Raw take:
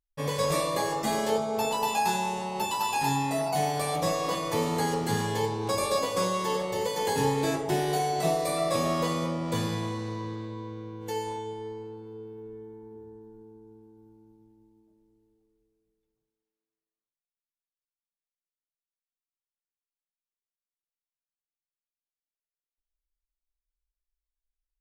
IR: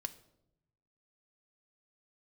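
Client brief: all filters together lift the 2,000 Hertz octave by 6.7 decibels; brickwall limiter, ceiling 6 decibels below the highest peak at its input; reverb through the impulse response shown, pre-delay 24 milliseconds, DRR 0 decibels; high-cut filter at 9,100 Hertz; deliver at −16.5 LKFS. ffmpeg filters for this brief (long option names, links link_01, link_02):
-filter_complex "[0:a]lowpass=9100,equalizer=frequency=2000:width_type=o:gain=8.5,alimiter=limit=-19dB:level=0:latency=1,asplit=2[link_01][link_02];[1:a]atrim=start_sample=2205,adelay=24[link_03];[link_02][link_03]afir=irnorm=-1:irlink=0,volume=2dB[link_04];[link_01][link_04]amix=inputs=2:normalize=0,volume=9dB"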